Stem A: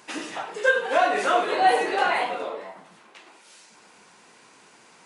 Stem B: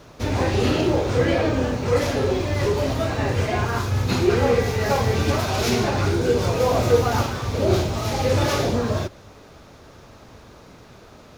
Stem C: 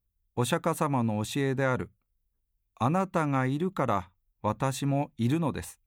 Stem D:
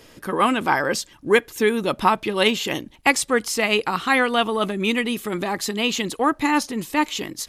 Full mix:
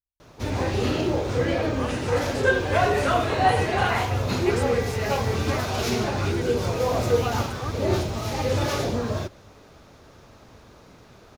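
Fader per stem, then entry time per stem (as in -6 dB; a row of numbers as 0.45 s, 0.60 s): -2.0 dB, -4.0 dB, -19.0 dB, -17.0 dB; 1.80 s, 0.20 s, 0.00 s, 1.40 s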